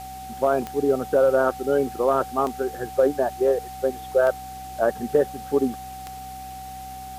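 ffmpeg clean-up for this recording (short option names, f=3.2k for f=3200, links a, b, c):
-af "adeclick=t=4,bandreject=f=64.4:t=h:w=4,bandreject=f=128.8:t=h:w=4,bandreject=f=193.2:t=h:w=4,bandreject=f=257.6:t=h:w=4,bandreject=f=760:w=30,afwtdn=0.005"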